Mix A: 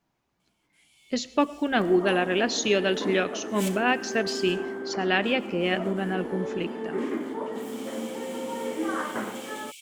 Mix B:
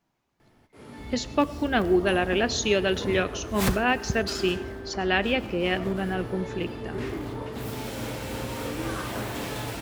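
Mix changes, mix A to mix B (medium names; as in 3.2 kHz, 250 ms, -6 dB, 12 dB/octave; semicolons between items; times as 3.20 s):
first sound: remove rippled Chebyshev high-pass 2.2 kHz, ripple 9 dB; second sound -5.5 dB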